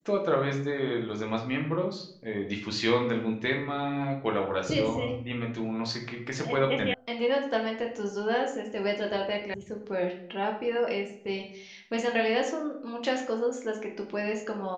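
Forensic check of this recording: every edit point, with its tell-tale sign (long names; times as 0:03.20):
0:06.94: cut off before it has died away
0:09.54: cut off before it has died away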